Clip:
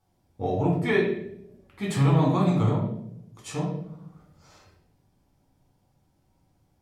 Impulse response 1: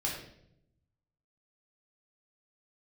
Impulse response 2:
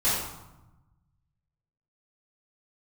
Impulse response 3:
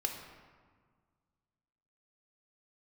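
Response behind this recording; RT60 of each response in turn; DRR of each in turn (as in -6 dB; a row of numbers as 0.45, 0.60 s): 1; 0.75, 1.0, 1.7 s; -4.0, -13.0, 2.5 dB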